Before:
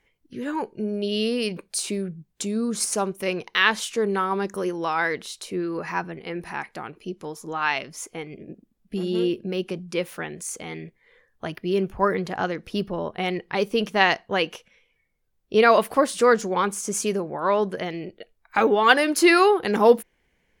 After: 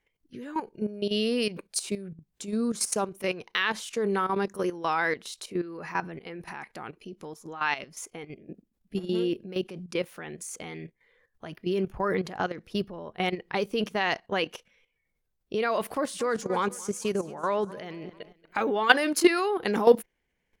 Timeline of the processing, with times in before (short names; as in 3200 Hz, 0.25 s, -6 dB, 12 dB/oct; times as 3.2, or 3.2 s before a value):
15.97–18.72 feedback echo 0.227 s, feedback 43%, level -18.5 dB
whole clip: level quantiser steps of 13 dB